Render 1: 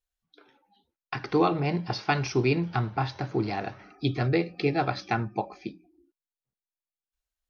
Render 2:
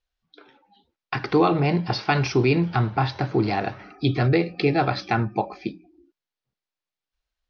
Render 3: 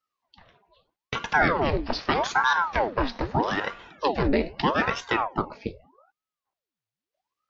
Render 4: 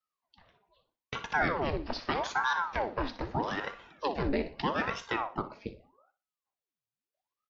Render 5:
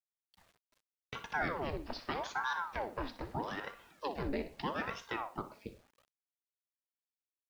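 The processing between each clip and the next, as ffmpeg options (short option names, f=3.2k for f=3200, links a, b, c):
-filter_complex "[0:a]lowpass=f=5.4k:w=0.5412,lowpass=f=5.4k:w=1.3066,asplit=2[a][b];[b]alimiter=limit=-20dB:level=0:latency=1:release=25,volume=1.5dB[c];[a][c]amix=inputs=2:normalize=0"
-af "aeval=exprs='val(0)*sin(2*PI*700*n/s+700*0.85/0.8*sin(2*PI*0.8*n/s))':c=same"
-af "aecho=1:1:61|122|183:0.2|0.0559|0.0156,volume=-7.5dB"
-af "acrusher=bits=9:mix=0:aa=0.000001,volume=-6.5dB"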